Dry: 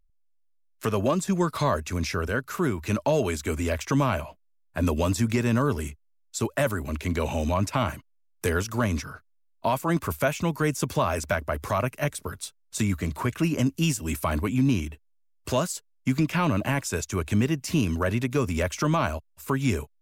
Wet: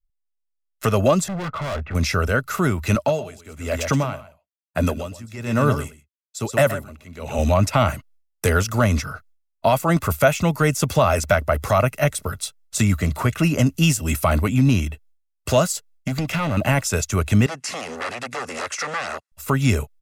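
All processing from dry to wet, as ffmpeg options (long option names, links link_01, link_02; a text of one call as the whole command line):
ffmpeg -i in.wav -filter_complex "[0:a]asettb=1/sr,asplit=3[link_01][link_02][link_03];[link_01]atrim=end=1.284[link_04];[link_02]atrim=start=1.28:end=1.95,asetpts=PTS-STARTPTS,afade=type=in:duration=0.004:curve=qsin,afade=type=out:start_time=0.666:duration=0.004:curve=qsin,lowpass=frequency=2000:width=0.5412,lowpass=frequency=2000:width=1.3066,volume=32dB,asoftclip=hard,volume=-32dB[link_05];[link_03]atrim=start=1.946[link_06];[link_04][link_05]acrossfade=duration=0.004:curve1=hsin:curve2=qsin[link_07];[link_07][link_06]acrossfade=duration=0.004:curve1=qsin:curve2=hsin,asettb=1/sr,asplit=3[link_08][link_09][link_10];[link_08]atrim=end=2.954[link_11];[link_09]atrim=start=2.95:end=7.39,asetpts=PTS-STARTPTS,afade=type=in:duration=0.004:curve=qsin,afade=type=out:start_time=4.436:duration=0.004:curve=qsin,highpass=87,aecho=1:1:124:0.355,atrim=end_sample=195804,aeval=exprs='val(0)*pow(10,-20*(0.5-0.5*cos(2*PI*1.1*n/s))/20)':channel_layout=same[link_12];[link_10]atrim=start=7.386[link_13];[link_11][link_12]acrossfade=duration=0.004:curve1=hsin:curve2=qsin[link_14];[link_14][link_13]acrossfade=duration=0.004:curve1=qsin:curve2=hsin,asettb=1/sr,asplit=3[link_15][link_16][link_17];[link_15]atrim=end=15.724[link_18];[link_16]atrim=start=15.72:end=16.57,asetpts=PTS-STARTPTS,afade=type=in:duration=0.004:curve=qsin,afade=type=out:start_time=0.846:duration=0.004:curve=qsin,acompressor=threshold=-24dB:ratio=3:attack=3.2:release=140:knee=1:detection=peak,asoftclip=type=hard:threshold=-25dB[link_19];[link_17]atrim=start=16.566[link_20];[link_18][link_19]acrossfade=duration=0.004:curve1=hsin:curve2=qsin[link_21];[link_21][link_20]acrossfade=duration=0.004:curve1=qsin:curve2=hsin,asettb=1/sr,asplit=3[link_22][link_23][link_24];[link_22]atrim=end=17.464[link_25];[link_23]atrim=start=17.46:end=19.32,asetpts=PTS-STARTPTS,afade=type=in:duration=0.004:curve=qsin,afade=type=out:start_time=1.856:duration=0.004:curve=qsin,acompressor=threshold=-24dB:ratio=4:attack=3.2:release=140:knee=1:detection=peak,aeval=exprs='0.0398*(abs(mod(val(0)/0.0398+3,4)-2)-1)':channel_layout=same,highpass=310,equalizer=frequency=630:width_type=q:width=4:gain=-5,equalizer=frequency=1100:width_type=q:width=4:gain=5,equalizer=frequency=1700:width_type=q:width=4:gain=6,equalizer=frequency=3400:width_type=q:width=4:gain=-4,lowpass=frequency=9600:width=0.5412,lowpass=frequency=9600:width=1.3066[link_26];[link_24]atrim=start=19.316[link_27];[link_25][link_26]acrossfade=duration=0.004:curve1=hsin:curve2=qsin[link_28];[link_28][link_27]acrossfade=duration=0.004:curve1=qsin:curve2=hsin,agate=range=-33dB:threshold=-55dB:ratio=3:detection=peak,aecho=1:1:1.5:0.4,volume=6.5dB" out.wav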